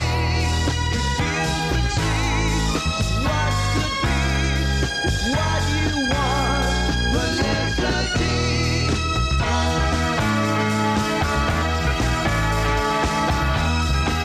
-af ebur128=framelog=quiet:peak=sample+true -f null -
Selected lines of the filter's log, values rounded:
Integrated loudness:
  I:         -20.8 LUFS
  Threshold: -30.8 LUFS
Loudness range:
  LRA:         0.8 LU
  Threshold: -40.7 LUFS
  LRA low:   -21.2 LUFS
  LRA high:  -20.4 LUFS
Sample peak:
  Peak:      -10.5 dBFS
True peak:
  Peak:      -10.4 dBFS